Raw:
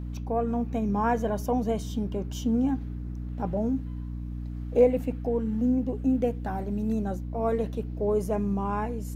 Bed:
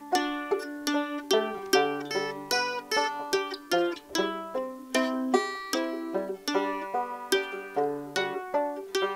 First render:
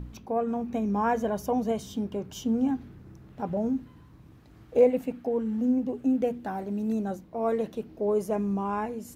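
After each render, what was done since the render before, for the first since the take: de-hum 60 Hz, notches 5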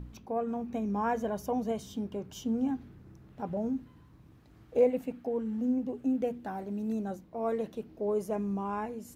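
gain -4.5 dB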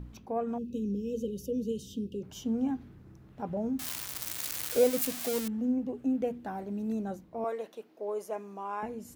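0.58–2.23 brick-wall FIR band-stop 550–2500 Hz; 3.79–5.48 switching spikes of -20.5 dBFS; 7.44–8.83 HPF 490 Hz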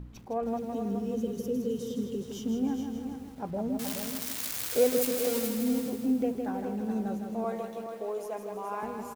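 on a send: echo 0.421 s -8 dB; on the sum: lo-fi delay 0.16 s, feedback 55%, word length 9-bit, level -6 dB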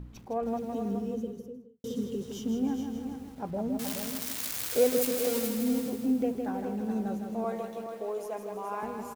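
0.87–1.84 studio fade out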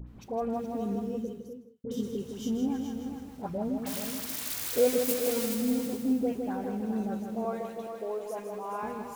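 dispersion highs, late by 74 ms, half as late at 1500 Hz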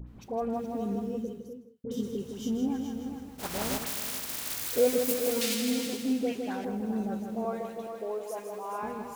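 3.38–4.55 spectral contrast lowered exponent 0.38; 5.41–6.65 weighting filter D; 8.23–8.79 tone controls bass -8 dB, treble +4 dB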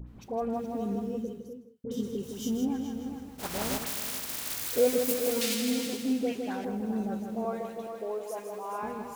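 2.23–2.65 high shelf 5600 Hz +9 dB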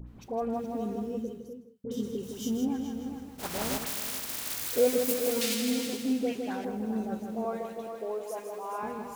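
notches 50/100/150/200 Hz

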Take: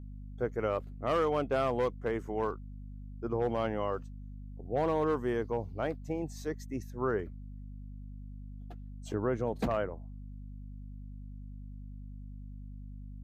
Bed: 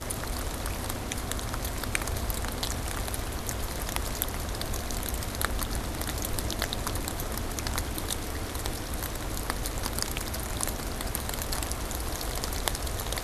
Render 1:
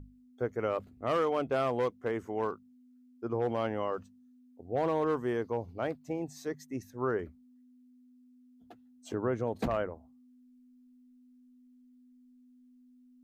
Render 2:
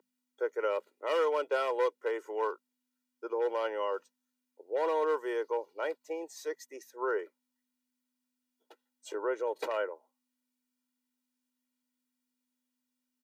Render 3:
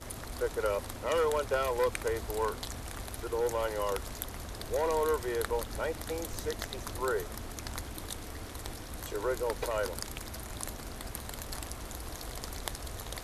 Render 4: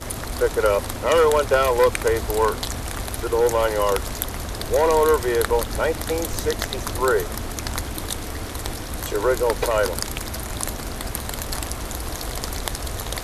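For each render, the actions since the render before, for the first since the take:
notches 50/100/150/200 Hz
Bessel high-pass 510 Hz, order 8; comb 2.1 ms, depth 82%
add bed -8.5 dB
gain +12 dB; limiter -3 dBFS, peak gain reduction 3 dB

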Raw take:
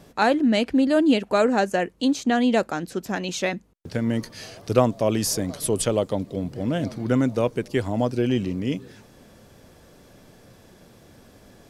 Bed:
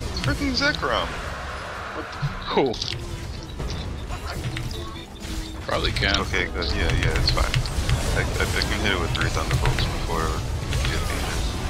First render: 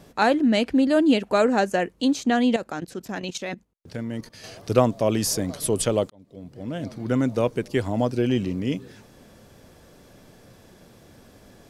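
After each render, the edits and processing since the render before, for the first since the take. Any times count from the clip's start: 2.56–4.44 level quantiser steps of 15 dB; 6.1–7.4 fade in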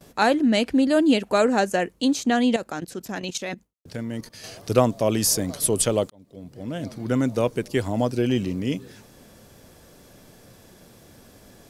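gate with hold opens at -43 dBFS; high shelf 6100 Hz +7.5 dB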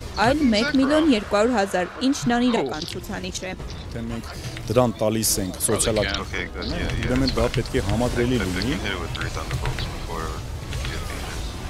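add bed -4.5 dB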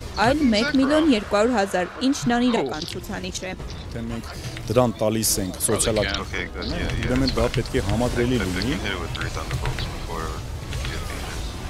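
nothing audible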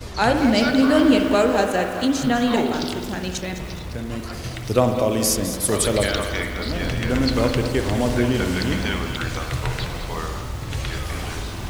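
spring tank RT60 1.6 s, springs 49 ms, chirp 70 ms, DRR 5.5 dB; lo-fi delay 0.208 s, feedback 55%, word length 6-bit, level -10 dB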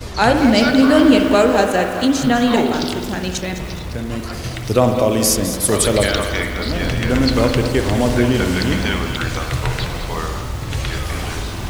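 gain +4.5 dB; limiter -1 dBFS, peak gain reduction 2 dB

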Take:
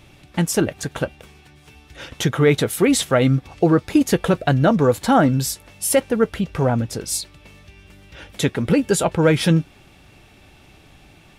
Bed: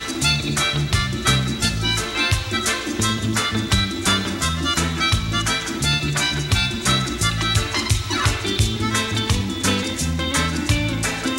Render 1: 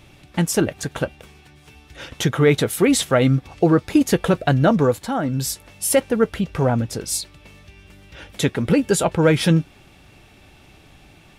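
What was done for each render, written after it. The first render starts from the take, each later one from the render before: 4.81–5.51 dip -8.5 dB, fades 0.29 s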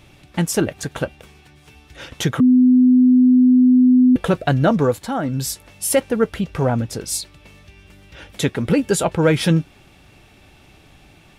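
2.4–4.16 bleep 252 Hz -8.5 dBFS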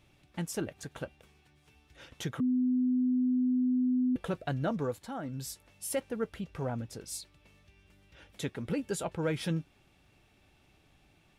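gain -16 dB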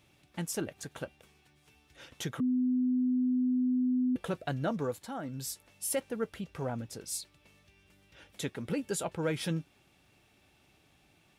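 HPF 98 Hz 6 dB/oct; high shelf 5100 Hz +4.5 dB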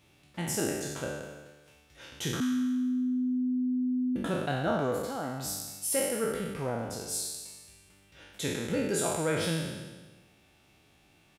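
spectral trails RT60 1.32 s; echo 0.256 s -23.5 dB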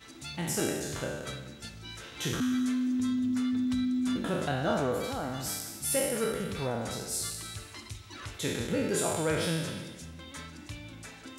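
add bed -23.5 dB

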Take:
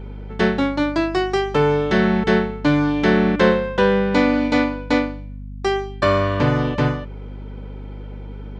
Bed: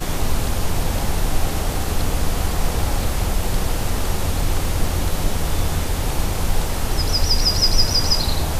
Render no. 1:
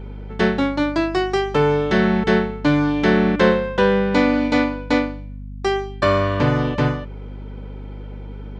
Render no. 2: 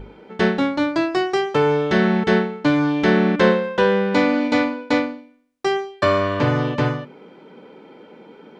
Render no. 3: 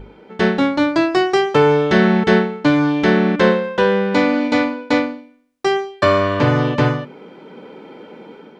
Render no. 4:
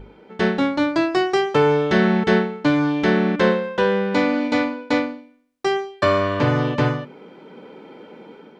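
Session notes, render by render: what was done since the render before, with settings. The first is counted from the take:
nothing audible
notches 50/100/150/200/250 Hz
AGC gain up to 6 dB
gain -3.5 dB

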